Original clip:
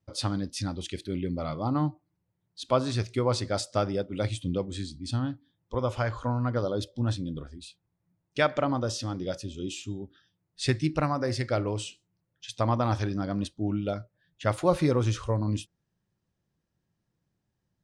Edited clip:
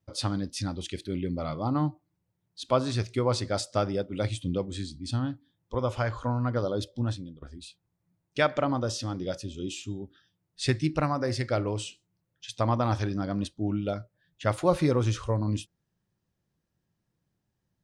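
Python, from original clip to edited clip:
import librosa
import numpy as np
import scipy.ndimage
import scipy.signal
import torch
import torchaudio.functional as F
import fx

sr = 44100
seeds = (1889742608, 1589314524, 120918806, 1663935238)

y = fx.edit(x, sr, fx.fade_out_to(start_s=6.99, length_s=0.43, floor_db=-23.0), tone=tone)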